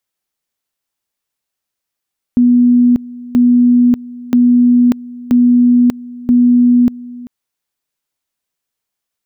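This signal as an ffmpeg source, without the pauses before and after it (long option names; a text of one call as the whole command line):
ffmpeg -f lavfi -i "aevalsrc='pow(10,(-5.5-20.5*gte(mod(t,0.98),0.59))/20)*sin(2*PI*244*t)':duration=4.9:sample_rate=44100" out.wav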